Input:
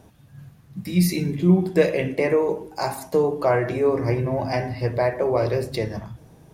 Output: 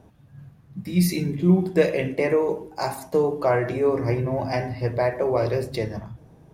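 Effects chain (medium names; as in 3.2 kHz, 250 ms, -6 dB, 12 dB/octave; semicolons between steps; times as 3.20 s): tape noise reduction on one side only decoder only; trim -1 dB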